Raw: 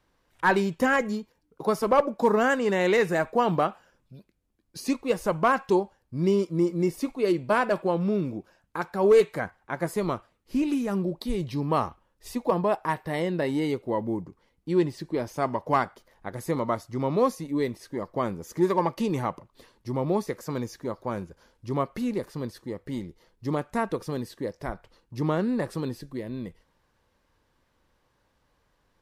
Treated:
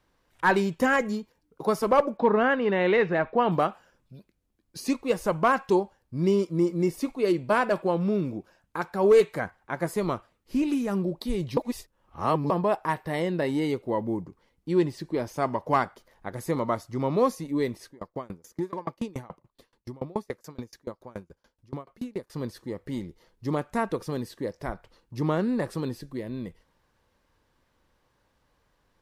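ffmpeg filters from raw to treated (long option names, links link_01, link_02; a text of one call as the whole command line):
ffmpeg -i in.wav -filter_complex "[0:a]asettb=1/sr,asplit=3[link_01][link_02][link_03];[link_01]atrim=end=2.174[link_04];[link_02]atrim=start=2.17:end=3.52,asetpts=PTS-STARTPTS,afade=type=in:duration=0.004:curve=qsin,afade=type=out:start_time=1.346:duration=0.004:curve=qsin,lowpass=frequency=3600:width=0.5412,lowpass=frequency=3600:width=1.3066[link_05];[link_03]atrim=start=3.516[link_06];[link_04][link_05]acrossfade=duration=0.004:curve1=hsin:curve2=qsin[link_07];[link_07][link_06]acrossfade=duration=0.004:curve1=qsin:curve2=hsin,asettb=1/sr,asplit=3[link_08][link_09][link_10];[link_08]atrim=end=17.874[link_11];[link_09]atrim=start=17.87:end=22.3,asetpts=PTS-STARTPTS,afade=type=in:duration=0.004:curve=qsin,afade=type=out:start_time=4.426:duration=0.004:curve=qsin,aeval=exprs='val(0)*pow(10,-30*if(lt(mod(7*n/s,1),2*abs(7)/1000),1-mod(7*n/s,1)/(2*abs(7)/1000),(mod(7*n/s,1)-2*abs(7)/1000)/(1-2*abs(7)/1000))/20)':channel_layout=same[link_12];[link_10]atrim=start=22.296[link_13];[link_11][link_12]acrossfade=duration=0.004:curve1=hsin:curve2=qsin[link_14];[link_14][link_13]acrossfade=duration=0.004:curve1=qsin:curve2=hsin,asplit=3[link_15][link_16][link_17];[link_15]atrim=end=11.572[link_18];[link_16]atrim=start=11.568:end=12.502,asetpts=PTS-STARTPTS,areverse[link_19];[link_17]atrim=start=12.498[link_20];[link_18][link_19]acrossfade=duration=0.004:curve1=hsin:curve2=hsin[link_21];[link_21][link_20]acrossfade=duration=0.004:curve1=hsin:curve2=hsin" out.wav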